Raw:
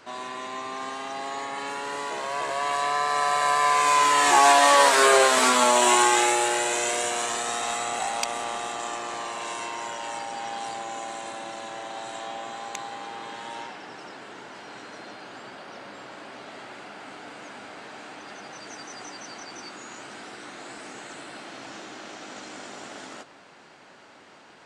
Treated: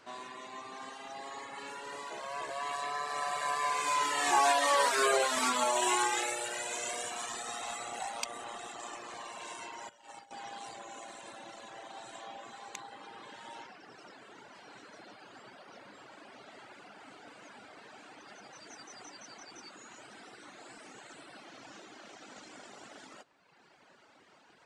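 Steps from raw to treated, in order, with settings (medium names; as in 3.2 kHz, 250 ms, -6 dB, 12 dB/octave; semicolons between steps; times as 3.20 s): reverb removal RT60 1.4 s; 9.89–10.31 s: gate -35 dBFS, range -16 dB; trim -7.5 dB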